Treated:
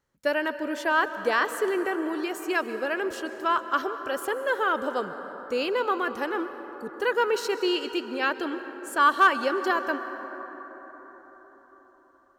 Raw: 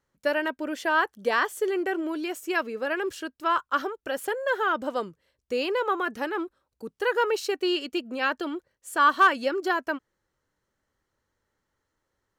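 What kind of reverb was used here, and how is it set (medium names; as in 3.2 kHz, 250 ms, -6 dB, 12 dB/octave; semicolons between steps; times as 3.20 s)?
plate-style reverb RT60 4.9 s, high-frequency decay 0.35×, pre-delay 115 ms, DRR 10 dB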